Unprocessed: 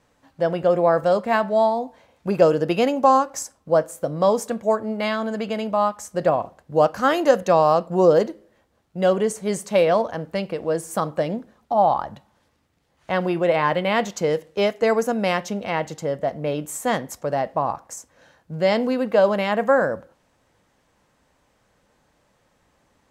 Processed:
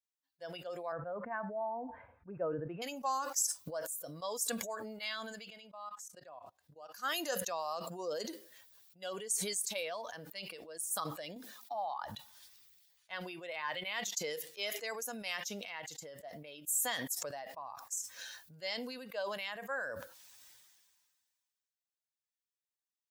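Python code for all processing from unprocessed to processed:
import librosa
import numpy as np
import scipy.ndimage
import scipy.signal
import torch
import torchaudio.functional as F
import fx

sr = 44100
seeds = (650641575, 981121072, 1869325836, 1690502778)

y = fx.chain(x, sr, fx.lowpass(hz=1700.0, slope=24),
    fx.low_shelf(hz=210.0, db=11.5), at=(0.92, 2.82))
y = fx.chain(y, sr, fx.high_shelf(hz=6300.0, db=-6.5),
    fx.level_steps(step_db=23), at=(5.5, 6.93))
y = fx.chain(y, sr, fx.highpass(hz=130.0, slope=12),
    fx.band_squash(depth_pct=70), at=(11.36, 12.03))
y = fx.bin_expand(y, sr, power=1.5)
y = np.diff(y, prepend=0.0)
y = fx.sustainer(y, sr, db_per_s=31.0)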